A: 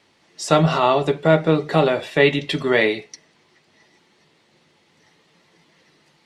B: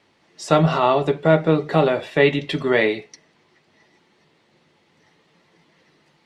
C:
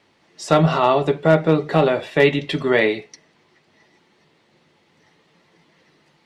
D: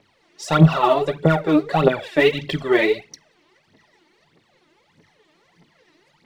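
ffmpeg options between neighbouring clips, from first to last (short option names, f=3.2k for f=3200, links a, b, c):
-af "highshelf=f=3.7k:g=-7"
-af "asoftclip=type=hard:threshold=-6dB,volume=1dB"
-af "aphaser=in_gain=1:out_gain=1:delay=3.4:decay=0.74:speed=1.6:type=triangular,volume=-4dB"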